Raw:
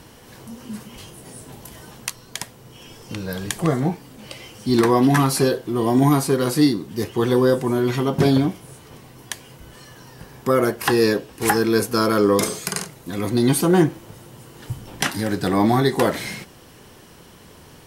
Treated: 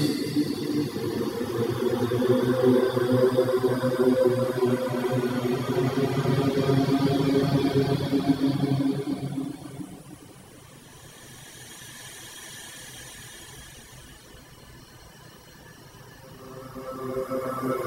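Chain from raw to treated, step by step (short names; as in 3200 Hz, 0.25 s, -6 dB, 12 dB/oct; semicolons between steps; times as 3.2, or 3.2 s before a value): Paulstretch 4.9×, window 1.00 s, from 6.75; requantised 12-bit, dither triangular; reverb removal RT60 1.1 s; gain -2 dB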